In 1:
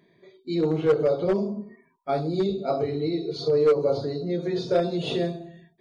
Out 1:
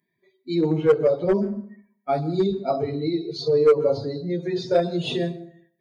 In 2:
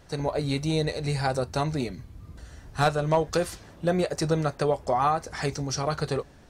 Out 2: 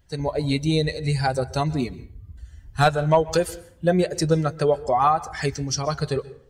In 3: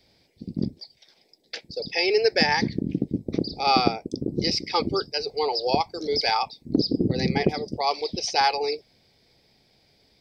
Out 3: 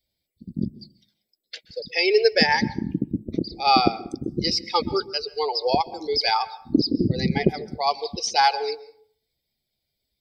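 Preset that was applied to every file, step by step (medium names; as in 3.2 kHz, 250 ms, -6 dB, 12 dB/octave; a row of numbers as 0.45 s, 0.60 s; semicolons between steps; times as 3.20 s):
expander on every frequency bin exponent 1.5; plate-style reverb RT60 0.57 s, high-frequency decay 0.6×, pre-delay 115 ms, DRR 18 dB; normalise loudness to -23 LUFS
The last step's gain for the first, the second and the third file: +4.5 dB, +6.5 dB, +4.5 dB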